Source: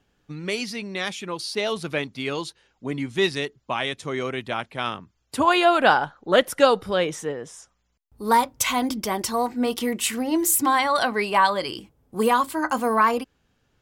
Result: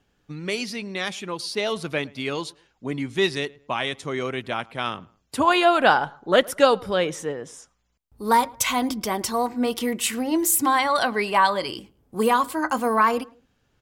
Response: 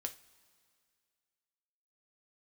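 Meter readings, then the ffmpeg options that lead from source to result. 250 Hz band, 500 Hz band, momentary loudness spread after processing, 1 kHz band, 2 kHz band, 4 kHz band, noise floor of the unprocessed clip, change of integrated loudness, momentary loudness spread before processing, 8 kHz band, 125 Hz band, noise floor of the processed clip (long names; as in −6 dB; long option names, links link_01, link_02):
0.0 dB, 0.0 dB, 14 LU, 0.0 dB, 0.0 dB, 0.0 dB, −70 dBFS, 0.0 dB, 14 LU, 0.0 dB, 0.0 dB, −69 dBFS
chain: -filter_complex "[0:a]asplit=2[link_01][link_02];[link_02]adelay=109,lowpass=frequency=1900:poles=1,volume=-23dB,asplit=2[link_03][link_04];[link_04]adelay=109,lowpass=frequency=1900:poles=1,volume=0.35[link_05];[link_01][link_03][link_05]amix=inputs=3:normalize=0"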